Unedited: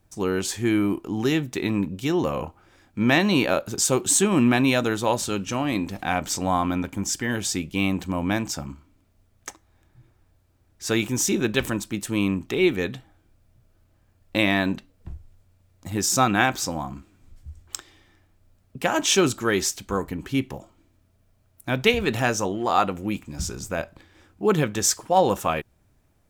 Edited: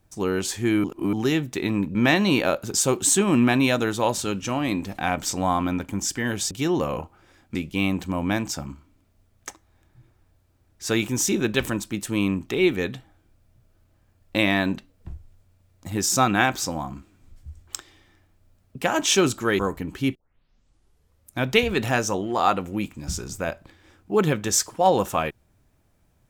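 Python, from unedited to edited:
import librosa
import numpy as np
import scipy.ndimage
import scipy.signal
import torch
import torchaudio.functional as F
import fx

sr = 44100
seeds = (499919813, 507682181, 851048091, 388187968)

y = fx.edit(x, sr, fx.reverse_span(start_s=0.84, length_s=0.29),
    fx.move(start_s=1.95, length_s=1.04, to_s=7.55),
    fx.cut(start_s=19.59, length_s=0.31),
    fx.tape_start(start_s=20.46, length_s=1.24), tone=tone)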